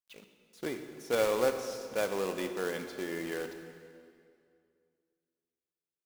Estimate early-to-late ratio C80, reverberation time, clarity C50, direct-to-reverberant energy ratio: 8.5 dB, 2.3 s, 7.5 dB, 6.5 dB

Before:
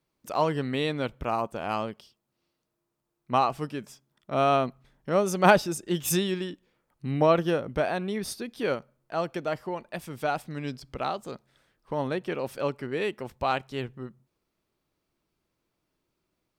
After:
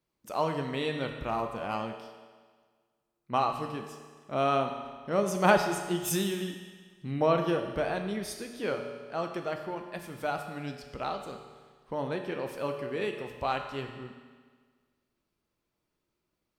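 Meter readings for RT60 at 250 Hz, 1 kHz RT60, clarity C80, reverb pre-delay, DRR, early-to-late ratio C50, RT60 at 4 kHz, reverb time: 1.6 s, 1.6 s, 7.5 dB, 7 ms, 4.0 dB, 6.5 dB, 1.5 s, 1.6 s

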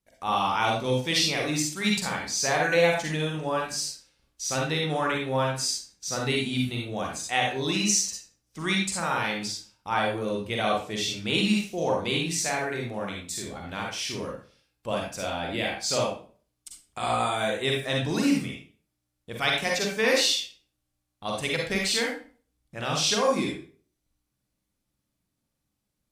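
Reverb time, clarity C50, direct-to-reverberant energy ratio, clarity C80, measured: 0.40 s, 1.5 dB, −1.0 dB, 8.0 dB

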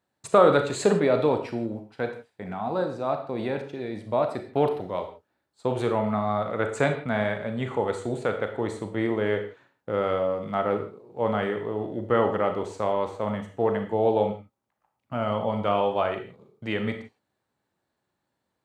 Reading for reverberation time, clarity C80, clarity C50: non-exponential decay, 12.0 dB, 8.5 dB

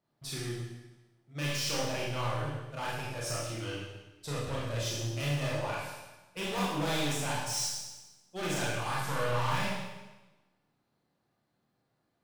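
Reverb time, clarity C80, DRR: 1.1 s, 3.0 dB, −6.0 dB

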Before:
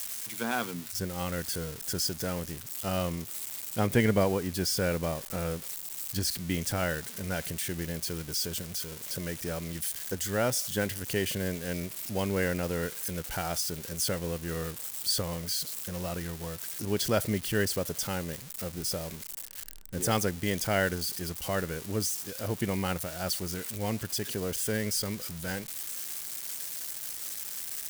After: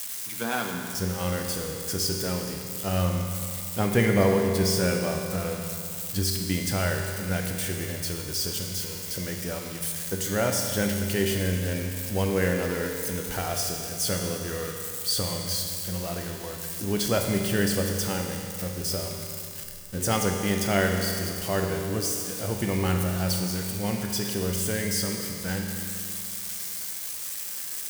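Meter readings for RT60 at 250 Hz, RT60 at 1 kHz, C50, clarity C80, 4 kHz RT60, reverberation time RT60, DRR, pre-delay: 2.5 s, 2.5 s, 3.0 dB, 4.0 dB, 2.4 s, 2.5 s, 1.5 dB, 10 ms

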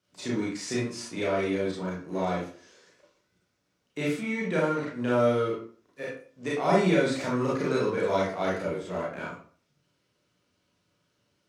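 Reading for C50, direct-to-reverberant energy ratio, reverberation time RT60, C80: 2.0 dB, −6.0 dB, 0.45 s, 7.5 dB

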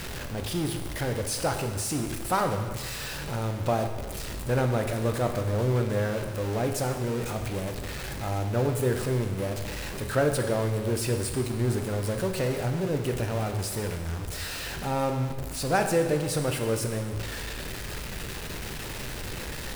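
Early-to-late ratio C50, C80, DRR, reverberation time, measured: 7.0 dB, 8.5 dB, 4.5 dB, 1.4 s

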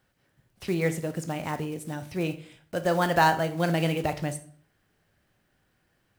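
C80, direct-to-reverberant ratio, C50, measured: 18.0 dB, 9.0 dB, 14.0 dB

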